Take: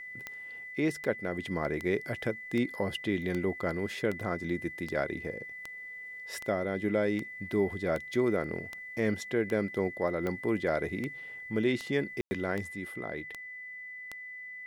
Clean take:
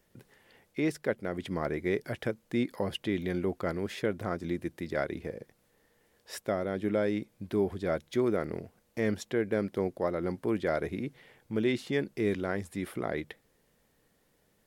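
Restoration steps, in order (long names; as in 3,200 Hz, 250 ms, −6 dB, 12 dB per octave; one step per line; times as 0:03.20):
click removal
notch filter 2,000 Hz, Q 30
ambience match 0:12.21–0:12.31
level correction +5.5 dB, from 0:12.72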